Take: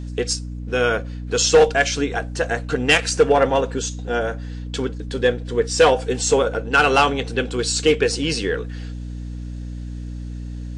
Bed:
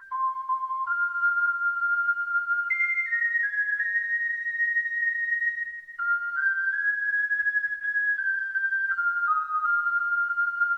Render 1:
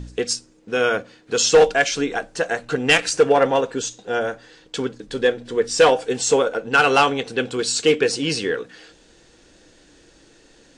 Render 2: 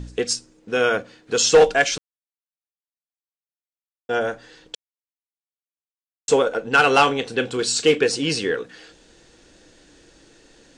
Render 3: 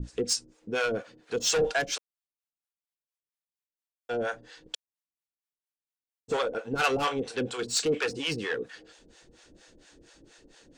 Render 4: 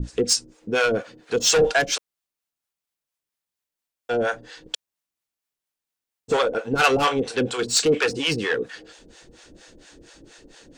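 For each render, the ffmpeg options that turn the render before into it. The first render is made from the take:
ffmpeg -i in.wav -af "bandreject=frequency=60:width_type=h:width=4,bandreject=frequency=120:width_type=h:width=4,bandreject=frequency=180:width_type=h:width=4,bandreject=frequency=240:width_type=h:width=4,bandreject=frequency=300:width_type=h:width=4" out.wav
ffmpeg -i in.wav -filter_complex "[0:a]asettb=1/sr,asplit=3[link_01][link_02][link_03];[link_01]atrim=end=6.934[link_04];[link_02]atrim=start=6.93:end=8.06,asetpts=PTS-STARTPTS,afade=type=in:duration=0.004:curve=qsin,afade=type=out:start_time=1.126:duration=0.004:curve=qsin,asplit=2[link_05][link_06];[link_06]adelay=34,volume=-14dB[link_07];[link_05][link_07]amix=inputs=2:normalize=0,atrim=end_sample=49833[link_08];[link_03]atrim=start=8.056[link_09];[link_04][link_08]acrossfade=duration=0.004:curve1=hsin:curve2=qsin[link_10];[link_10][link_09]acrossfade=duration=0.004:curve1=qsin:curve2=hsin,asplit=5[link_11][link_12][link_13][link_14][link_15];[link_11]atrim=end=1.98,asetpts=PTS-STARTPTS,afade=type=out:start_time=1.976:duration=0.004:curve=hsin[link_16];[link_12]atrim=start=1.98:end=4.09,asetpts=PTS-STARTPTS,volume=0[link_17];[link_13]atrim=start=4.09:end=4.75,asetpts=PTS-STARTPTS,afade=type=in:duration=0.004:curve=hsin,afade=type=out:start_time=0.656:duration=0.004:curve=hsin[link_18];[link_14]atrim=start=4.75:end=6.28,asetpts=PTS-STARTPTS,volume=0[link_19];[link_15]atrim=start=6.28,asetpts=PTS-STARTPTS,afade=type=in:duration=0.004:curve=hsin[link_20];[link_16][link_17][link_18][link_19][link_20]concat=n=5:v=0:a=1" out.wav
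ffmpeg -i in.wav -filter_complex "[0:a]asoftclip=type=tanh:threshold=-17dB,acrossover=split=550[link_01][link_02];[link_01]aeval=exprs='val(0)*(1-1/2+1/2*cos(2*PI*4.3*n/s))':channel_layout=same[link_03];[link_02]aeval=exprs='val(0)*(1-1/2-1/2*cos(2*PI*4.3*n/s))':channel_layout=same[link_04];[link_03][link_04]amix=inputs=2:normalize=0" out.wav
ffmpeg -i in.wav -af "volume=7.5dB" out.wav

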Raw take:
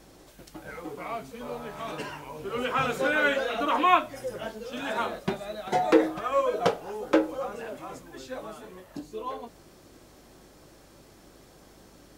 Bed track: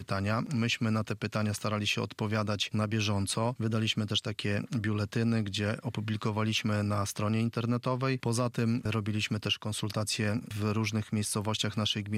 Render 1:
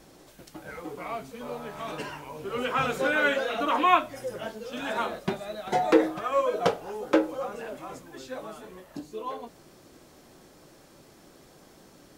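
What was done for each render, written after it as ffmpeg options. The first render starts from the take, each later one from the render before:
ffmpeg -i in.wav -af "bandreject=frequency=50:width_type=h:width=4,bandreject=frequency=100:width_type=h:width=4" out.wav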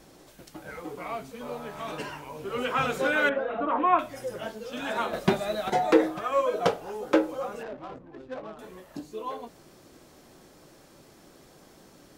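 ffmpeg -i in.wav -filter_complex "[0:a]asettb=1/sr,asplit=3[link_01][link_02][link_03];[link_01]atrim=end=3.294[link_04];[link_02]atrim=start=3.29:end=3.99,asetpts=PTS-STARTPTS,afade=type=in:duration=0.004:curve=qsin,afade=type=out:start_time=0.696:duration=0.004:curve=qsin,lowpass=1300[link_05];[link_03]atrim=start=3.986[link_06];[link_04][link_05]acrossfade=duration=0.004:curve1=hsin:curve2=qsin[link_07];[link_07][link_06]acrossfade=duration=0.004:curve1=qsin:curve2=hsin,asettb=1/sr,asplit=3[link_08][link_09][link_10];[link_08]atrim=end=5.134[link_11];[link_09]atrim=start=5.13:end=5.7,asetpts=PTS-STARTPTS,afade=type=in:duration=0.004:curve=qsin,afade=type=out:start_time=0.566:duration=0.004:curve=qsin,acontrast=69[link_12];[link_10]atrim=start=5.696[link_13];[link_11][link_12]acrossfade=duration=0.004:curve1=hsin:curve2=qsin[link_14];[link_14][link_13]acrossfade=duration=0.004:curve1=qsin:curve2=hsin,asettb=1/sr,asplit=3[link_15][link_16][link_17];[link_15]atrim=end=7.634[link_18];[link_16]atrim=start=7.63:end=8.59,asetpts=PTS-STARTPTS,afade=type=in:duration=0.004:curve=qsin,afade=type=out:start_time=0.956:duration=0.004:curve=qsin,adynamicsmooth=sensitivity=7.5:basefreq=530[link_19];[link_17]atrim=start=8.586[link_20];[link_18][link_19]acrossfade=duration=0.004:curve1=hsin:curve2=qsin[link_21];[link_21][link_20]acrossfade=duration=0.004:curve1=qsin:curve2=hsin" out.wav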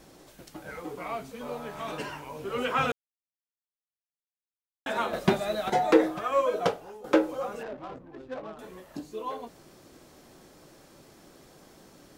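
ffmpeg -i in.wav -filter_complex "[0:a]asplit=4[link_01][link_02][link_03][link_04];[link_01]atrim=end=2.92,asetpts=PTS-STARTPTS,afade=type=out:start_time=2.916:duration=0.004:curve=hsin[link_05];[link_02]atrim=start=2.92:end=4.86,asetpts=PTS-STARTPTS,volume=0[link_06];[link_03]atrim=start=4.86:end=7.04,asetpts=PTS-STARTPTS,afade=type=in:duration=0.004:curve=hsin,afade=type=out:start_time=1.67:duration=0.51:silence=0.223872[link_07];[link_04]atrim=start=7.04,asetpts=PTS-STARTPTS,afade=type=in:duration=0.004:curve=hsin:silence=0.223872[link_08];[link_05][link_06][link_07][link_08]concat=n=4:v=0:a=1" out.wav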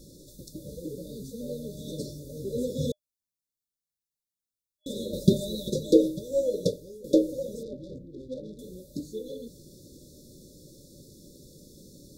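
ffmpeg -i in.wav -af "bass=frequency=250:gain=8,treble=frequency=4000:gain=5,afftfilt=real='re*(1-between(b*sr/4096,610,3400))':imag='im*(1-between(b*sr/4096,610,3400))':win_size=4096:overlap=0.75" out.wav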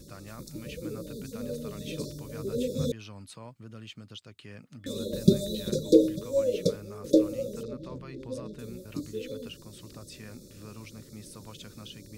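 ffmpeg -i in.wav -i bed.wav -filter_complex "[1:a]volume=-15.5dB[link_01];[0:a][link_01]amix=inputs=2:normalize=0" out.wav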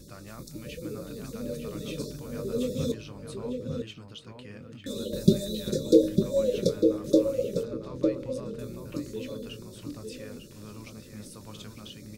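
ffmpeg -i in.wav -filter_complex "[0:a]asplit=2[link_01][link_02];[link_02]adelay=24,volume=-12dB[link_03];[link_01][link_03]amix=inputs=2:normalize=0,asplit=2[link_04][link_05];[link_05]adelay=901,lowpass=frequency=1900:poles=1,volume=-4dB,asplit=2[link_06][link_07];[link_07]adelay=901,lowpass=frequency=1900:poles=1,volume=0.16,asplit=2[link_08][link_09];[link_09]adelay=901,lowpass=frequency=1900:poles=1,volume=0.16[link_10];[link_06][link_08][link_10]amix=inputs=3:normalize=0[link_11];[link_04][link_11]amix=inputs=2:normalize=0" out.wav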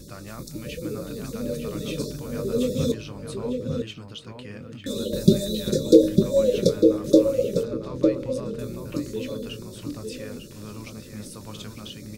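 ffmpeg -i in.wav -af "volume=5.5dB,alimiter=limit=-2dB:level=0:latency=1" out.wav

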